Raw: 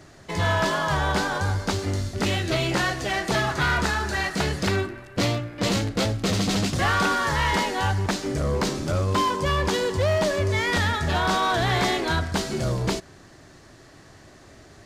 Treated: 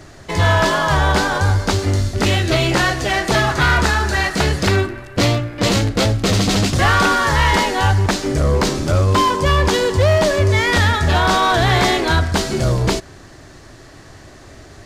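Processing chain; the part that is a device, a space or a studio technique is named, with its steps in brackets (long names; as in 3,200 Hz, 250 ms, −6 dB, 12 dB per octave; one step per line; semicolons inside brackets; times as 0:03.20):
low shelf boost with a cut just above (low-shelf EQ 76 Hz +6.5 dB; parametric band 180 Hz −3.5 dB 0.52 octaves)
level +7.5 dB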